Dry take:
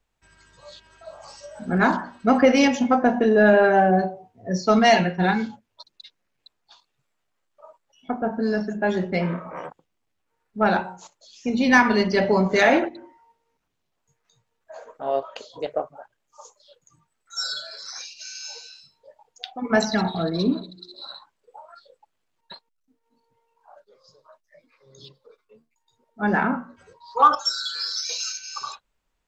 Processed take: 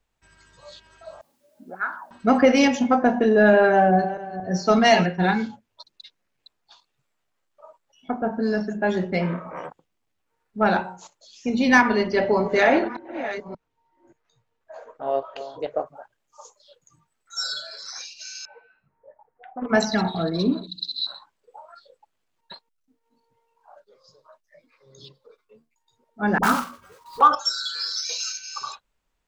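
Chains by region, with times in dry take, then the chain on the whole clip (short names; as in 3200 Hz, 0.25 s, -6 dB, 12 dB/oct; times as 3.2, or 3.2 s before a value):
1.21–2.11 notches 50/100 Hz + auto-wah 230–1400 Hz, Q 6.3, up, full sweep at -17 dBFS + requantised 12-bit, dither triangular
3.72–5.06 regenerating reverse delay 0.227 s, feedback 56%, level -13.5 dB + doubler 12 ms -13.5 dB
11.81–15.86 reverse delay 0.579 s, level -12 dB + LPF 2900 Hz 6 dB/oct + bell 190 Hz -8.5 dB 0.23 oct
18.45–19.69 steep low-pass 1900 Hz + Doppler distortion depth 0.46 ms
20.67–21.07 brick-wall FIR band-stop 320–2500 Hz + bell 4000 Hz +13 dB 1.3 oct + flutter echo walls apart 11.6 m, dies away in 0.32 s
26.38–27.21 block floating point 3-bit + bell 1200 Hz +13.5 dB 0.27 oct + dispersion highs, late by 53 ms, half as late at 470 Hz
whole clip: dry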